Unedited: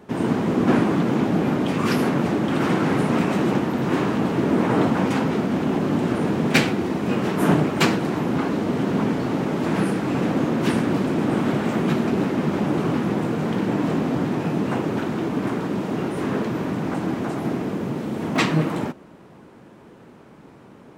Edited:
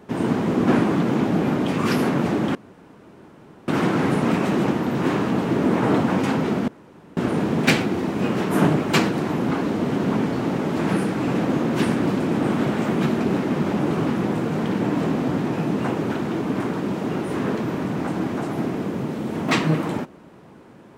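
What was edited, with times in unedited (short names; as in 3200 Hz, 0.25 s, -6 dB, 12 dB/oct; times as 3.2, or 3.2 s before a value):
2.55 insert room tone 1.13 s
5.55–6.04 room tone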